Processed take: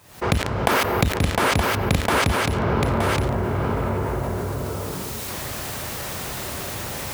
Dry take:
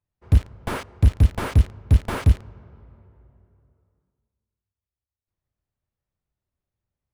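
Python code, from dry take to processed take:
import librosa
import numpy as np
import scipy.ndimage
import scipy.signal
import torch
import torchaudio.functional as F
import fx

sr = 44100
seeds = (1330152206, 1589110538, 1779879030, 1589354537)

y = fx.recorder_agc(x, sr, target_db=-12.0, rise_db_per_s=72.0, max_gain_db=30)
y = fx.highpass(y, sr, hz=370.0, slope=6)
y = fx.resample_bad(y, sr, factor=3, down='none', up='hold', at=(0.71, 1.17))
y = y + 10.0 ** (-8.5 / 20.0) * np.pad(y, (int(921 * sr / 1000.0), 0))[:len(y)]
y = fx.env_flatten(y, sr, amount_pct=70)
y = F.gain(torch.from_numpy(y), -2.5).numpy()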